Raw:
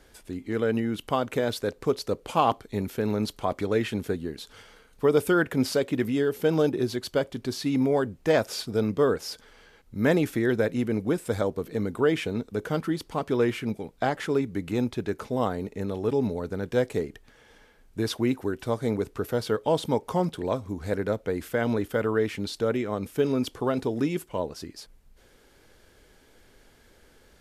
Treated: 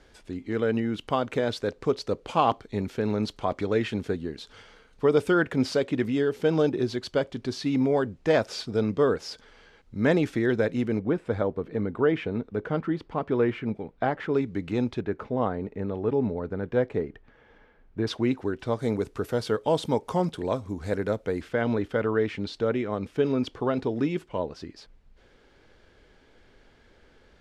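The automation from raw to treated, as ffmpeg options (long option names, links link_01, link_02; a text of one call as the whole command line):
ffmpeg -i in.wav -af "asetnsamples=nb_out_samples=441:pad=0,asendcmd='10.99 lowpass f 2300;14.34 lowpass f 4700;15.01 lowpass f 2100;18.07 lowpass f 4900;18.79 lowpass f 9400;21.41 lowpass f 4100',lowpass=5900" out.wav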